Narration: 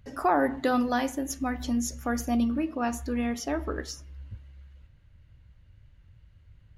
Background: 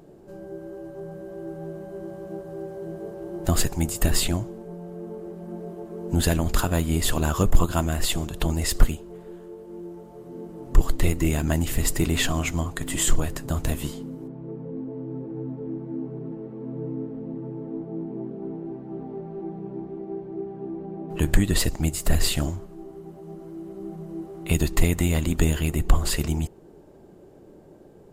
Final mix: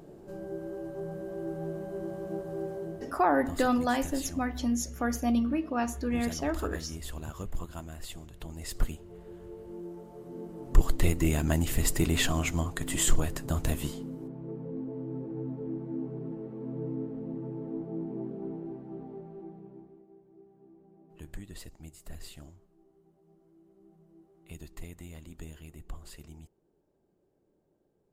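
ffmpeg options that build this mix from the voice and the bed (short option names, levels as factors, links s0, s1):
-filter_complex "[0:a]adelay=2950,volume=0.891[s0];[1:a]volume=5.01,afade=t=out:st=2.71:d=0.52:silence=0.133352,afade=t=in:st=8.51:d=1.15:silence=0.188365,afade=t=out:st=18.34:d=1.73:silence=0.1[s1];[s0][s1]amix=inputs=2:normalize=0"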